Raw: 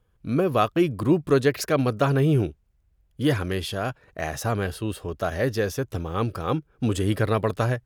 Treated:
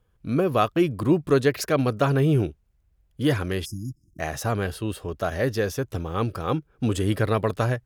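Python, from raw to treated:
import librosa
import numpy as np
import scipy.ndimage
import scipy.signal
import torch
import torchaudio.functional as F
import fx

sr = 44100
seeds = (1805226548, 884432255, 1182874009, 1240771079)

y = fx.spec_erase(x, sr, start_s=3.65, length_s=0.55, low_hz=350.0, high_hz=4900.0)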